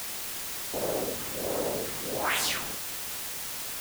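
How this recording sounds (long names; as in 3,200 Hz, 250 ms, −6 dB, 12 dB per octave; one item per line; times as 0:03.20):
phaser sweep stages 2, 1.4 Hz, lowest notch 540–4,800 Hz
a quantiser's noise floor 6 bits, dither triangular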